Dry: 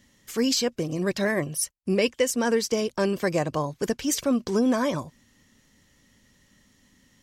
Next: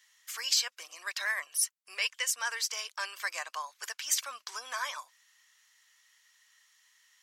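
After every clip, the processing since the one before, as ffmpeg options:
ffmpeg -i in.wav -af "highpass=frequency=1100:width=0.5412,highpass=frequency=1100:width=1.3066,volume=-1dB" out.wav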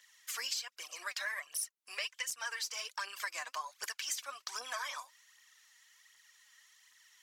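ffmpeg -i in.wav -af "aphaser=in_gain=1:out_gain=1:delay=4.3:decay=0.56:speed=1.3:type=triangular,acompressor=threshold=-36dB:ratio=5" out.wav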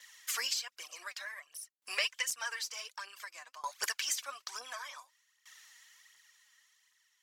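ffmpeg -i in.wav -af "aeval=exprs='val(0)*pow(10,-20*if(lt(mod(0.55*n/s,1),2*abs(0.55)/1000),1-mod(0.55*n/s,1)/(2*abs(0.55)/1000),(mod(0.55*n/s,1)-2*abs(0.55)/1000)/(1-2*abs(0.55)/1000))/20)':channel_layout=same,volume=8.5dB" out.wav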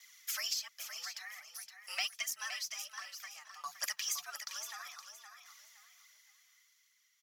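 ffmpeg -i in.wav -af "aexciter=amount=1.4:drive=4.1:freq=4700,afreqshift=150,aecho=1:1:517|1034|1551:0.376|0.101|0.0274,volume=-4.5dB" out.wav

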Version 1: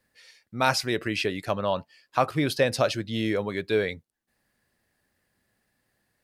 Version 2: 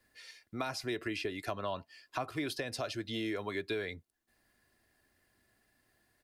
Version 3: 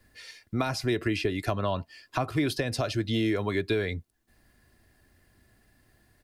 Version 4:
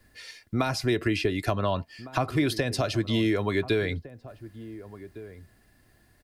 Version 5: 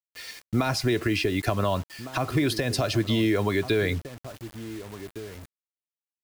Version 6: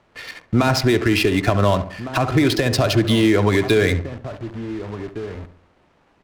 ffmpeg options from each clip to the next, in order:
ffmpeg -i in.wav -filter_complex "[0:a]alimiter=limit=-15dB:level=0:latency=1:release=237,acrossover=split=290|800[link_01][link_02][link_03];[link_01]acompressor=threshold=-44dB:ratio=4[link_04];[link_02]acompressor=threshold=-41dB:ratio=4[link_05];[link_03]acompressor=threshold=-40dB:ratio=4[link_06];[link_04][link_05][link_06]amix=inputs=3:normalize=0,aecho=1:1:2.9:0.4" out.wav
ffmpeg -i in.wav -af "lowshelf=frequency=210:gain=12,volume=6dB" out.wav
ffmpeg -i in.wav -filter_complex "[0:a]asplit=2[link_01][link_02];[link_02]adelay=1458,volume=-16dB,highshelf=frequency=4000:gain=-32.8[link_03];[link_01][link_03]amix=inputs=2:normalize=0,volume=2dB" out.wav
ffmpeg -i in.wav -af "alimiter=limit=-18dB:level=0:latency=1:release=108,acrusher=bits=7:mix=0:aa=0.000001,volume=3.5dB" out.wav
ffmpeg -i in.wav -filter_complex "[0:a]aeval=exprs='val(0)+0.5*0.00891*sgn(val(0))':channel_layout=same,asplit=2[link_01][link_02];[link_02]adelay=69,lowpass=frequency=3300:poles=1,volume=-11dB,asplit=2[link_03][link_04];[link_04]adelay=69,lowpass=frequency=3300:poles=1,volume=0.43,asplit=2[link_05][link_06];[link_06]adelay=69,lowpass=frequency=3300:poles=1,volume=0.43,asplit=2[link_07][link_08];[link_08]adelay=69,lowpass=frequency=3300:poles=1,volume=0.43[link_09];[link_01][link_03][link_05][link_07][link_09]amix=inputs=5:normalize=0,adynamicsmooth=sensitivity=8:basefreq=1100,volume=7dB" out.wav

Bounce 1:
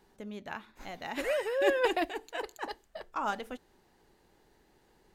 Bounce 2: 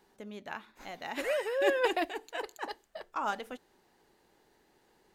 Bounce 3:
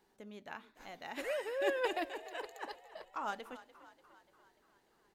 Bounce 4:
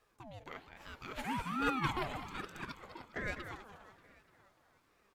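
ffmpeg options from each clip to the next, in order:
ffmpeg -i in.wav -af "lowshelf=frequency=140:gain=-10.5" out.wav
ffmpeg -i in.wav -filter_complex "[0:a]asplit=7[link_01][link_02][link_03][link_04][link_05][link_06][link_07];[link_02]adelay=293,afreqshift=37,volume=-16.5dB[link_08];[link_03]adelay=586,afreqshift=74,volume=-21.1dB[link_09];[link_04]adelay=879,afreqshift=111,volume=-25.7dB[link_10];[link_05]adelay=1172,afreqshift=148,volume=-30.2dB[link_11];[link_06]adelay=1465,afreqshift=185,volume=-34.8dB[link_12];[link_07]adelay=1758,afreqshift=222,volume=-39.4dB[link_13];[link_01][link_08][link_09][link_10][link_11][link_12][link_13]amix=inputs=7:normalize=0,volume=-6dB" out.wav
ffmpeg -i in.wav -filter_complex "[0:a]asplit=5[link_01][link_02][link_03][link_04][link_05];[link_02]adelay=203,afreqshift=-51,volume=-9.5dB[link_06];[link_03]adelay=406,afreqshift=-102,volume=-18.9dB[link_07];[link_04]adelay=609,afreqshift=-153,volume=-28.2dB[link_08];[link_05]adelay=812,afreqshift=-204,volume=-37.6dB[link_09];[link_01][link_06][link_07][link_08][link_09]amix=inputs=5:normalize=0,aeval=exprs='val(0)*sin(2*PI*570*n/s+570*0.5/1.2*sin(2*PI*1.2*n/s))':channel_layout=same,volume=2.5dB" out.wav

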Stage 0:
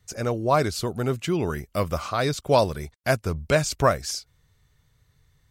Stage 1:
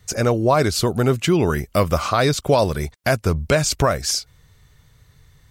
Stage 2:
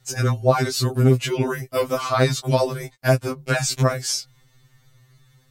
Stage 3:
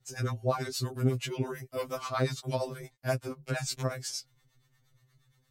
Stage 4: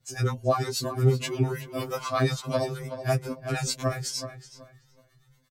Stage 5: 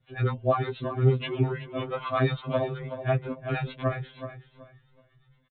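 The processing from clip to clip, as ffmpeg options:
ffmpeg -i in.wav -filter_complex "[0:a]asplit=2[link_01][link_02];[link_02]acompressor=threshold=-29dB:ratio=6,volume=0dB[link_03];[link_01][link_03]amix=inputs=2:normalize=0,alimiter=limit=-11dB:level=0:latency=1:release=88,volume=4.5dB" out.wav
ffmpeg -i in.wav -af "afftfilt=real='re*2.45*eq(mod(b,6),0)':imag='im*2.45*eq(mod(b,6),0)':win_size=2048:overlap=0.75" out.wav
ffmpeg -i in.wav -filter_complex "[0:a]acrossover=split=570[link_01][link_02];[link_01]aeval=exprs='val(0)*(1-0.7/2+0.7/2*cos(2*PI*8.5*n/s))':channel_layout=same[link_03];[link_02]aeval=exprs='val(0)*(1-0.7/2-0.7/2*cos(2*PI*8.5*n/s))':channel_layout=same[link_04];[link_03][link_04]amix=inputs=2:normalize=0,volume=-8.5dB" out.wav
ffmpeg -i in.wav -filter_complex "[0:a]asplit=2[link_01][link_02];[link_02]adelay=375,lowpass=frequency=2700:poles=1,volume=-10dB,asplit=2[link_03][link_04];[link_04]adelay=375,lowpass=frequency=2700:poles=1,volume=0.27,asplit=2[link_05][link_06];[link_06]adelay=375,lowpass=frequency=2700:poles=1,volume=0.27[link_07];[link_03][link_05][link_07]amix=inputs=3:normalize=0[link_08];[link_01][link_08]amix=inputs=2:normalize=0,asplit=2[link_09][link_10];[link_10]adelay=9.2,afreqshift=2.4[link_11];[link_09][link_11]amix=inputs=2:normalize=1,volume=7.5dB" out.wav
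ffmpeg -i in.wav -af "aresample=8000,aresample=44100" out.wav

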